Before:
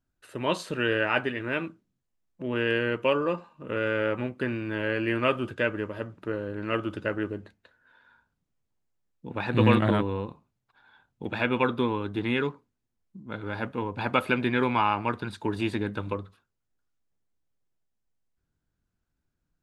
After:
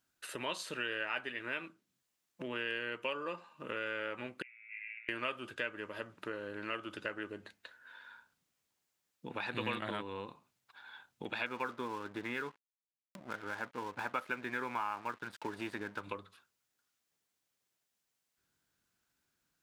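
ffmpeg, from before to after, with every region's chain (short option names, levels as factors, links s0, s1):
-filter_complex "[0:a]asettb=1/sr,asplit=3[s0][s1][s2];[s0]atrim=end=4.424[s3];[s1]atrim=start=4.42:end=5.09,asetpts=PTS-STARTPTS,afade=t=in:d=0.004:c=qsin,afade=t=out:st=0.666:d=0.004:c=qsin,aeval=exprs='val(0)*sin(2*PI*1100*n/s)':c=same,asuperpass=centerf=2200:order=8:qfactor=4.5[s4];[s2]atrim=start=5.086[s5];[s3][s4]acrossfade=d=0.004:c1=hsin:c2=qsin[s6];[s6][s5]acrossfade=d=0.004:c1=qsin:c2=hsin,asettb=1/sr,asplit=3[s7][s8][s9];[s7]atrim=end=11.464[s10];[s8]atrim=start=11.46:end=16.04,asetpts=PTS-STARTPTS,afade=t=in:d=0.004:c=qsin,afade=t=out:st=4.576:d=0.004:c=qsin,highshelf=f=2200:t=q:w=1.5:g=-8.5,aeval=exprs='sgn(val(0))*max(abs(val(0))-0.00447,0)':c=same,acompressor=mode=upward:threshold=0.00891:ratio=2.5:attack=3.2:release=140:knee=2.83:detection=peak[s11];[s9]atrim=start=16.036[s12];[s10][s11]acrossfade=d=0.004:c1=hsin:c2=qsin[s13];[s13][s12]acrossfade=d=0.004:c1=qsin:c2=hsin,highpass=f=250:p=1,tiltshelf=f=1100:g=-5.5,acompressor=threshold=0.00447:ratio=2.5,volume=1.68"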